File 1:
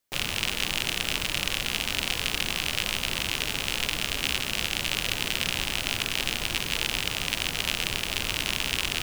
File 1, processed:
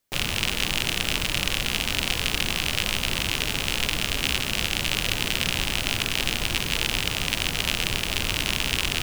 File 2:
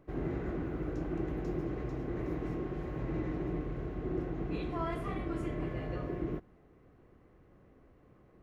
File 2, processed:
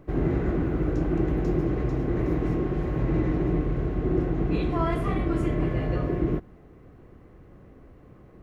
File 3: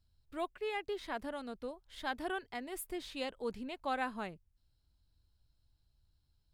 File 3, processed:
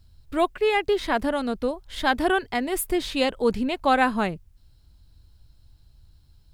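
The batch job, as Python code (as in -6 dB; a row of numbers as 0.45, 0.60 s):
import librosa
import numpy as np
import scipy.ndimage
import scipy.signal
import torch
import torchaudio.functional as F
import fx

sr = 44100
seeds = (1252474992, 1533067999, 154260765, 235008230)

y = fx.low_shelf(x, sr, hz=270.0, db=4.5)
y = y * 10.0 ** (-26 / 20.0) / np.sqrt(np.mean(np.square(y)))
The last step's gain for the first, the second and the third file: +2.5, +8.0, +15.5 dB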